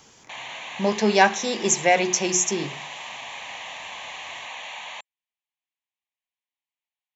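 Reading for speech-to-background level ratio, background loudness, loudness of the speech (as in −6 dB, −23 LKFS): 14.0 dB, −35.0 LKFS, −21.0 LKFS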